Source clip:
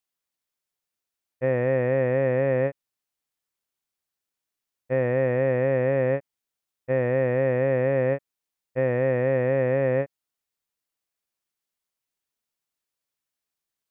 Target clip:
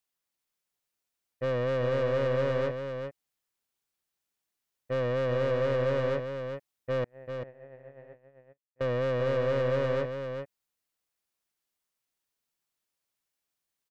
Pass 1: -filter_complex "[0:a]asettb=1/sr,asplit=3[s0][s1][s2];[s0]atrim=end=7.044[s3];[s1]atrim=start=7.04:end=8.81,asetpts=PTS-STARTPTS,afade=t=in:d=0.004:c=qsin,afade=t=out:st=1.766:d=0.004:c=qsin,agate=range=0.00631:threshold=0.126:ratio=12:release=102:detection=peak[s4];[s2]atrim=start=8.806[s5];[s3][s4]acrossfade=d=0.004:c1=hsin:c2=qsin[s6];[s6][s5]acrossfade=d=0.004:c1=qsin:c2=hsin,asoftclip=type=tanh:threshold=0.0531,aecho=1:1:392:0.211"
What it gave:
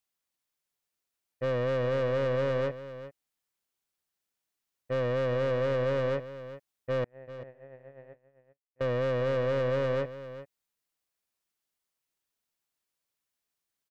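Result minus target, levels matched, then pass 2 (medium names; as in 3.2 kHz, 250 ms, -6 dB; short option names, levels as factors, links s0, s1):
echo-to-direct -6.5 dB
-filter_complex "[0:a]asettb=1/sr,asplit=3[s0][s1][s2];[s0]atrim=end=7.044[s3];[s1]atrim=start=7.04:end=8.81,asetpts=PTS-STARTPTS,afade=t=in:d=0.004:c=qsin,afade=t=out:st=1.766:d=0.004:c=qsin,agate=range=0.00631:threshold=0.126:ratio=12:release=102:detection=peak[s4];[s2]atrim=start=8.806[s5];[s3][s4]acrossfade=d=0.004:c1=hsin:c2=qsin[s6];[s6][s5]acrossfade=d=0.004:c1=qsin:c2=hsin,asoftclip=type=tanh:threshold=0.0531,aecho=1:1:392:0.447"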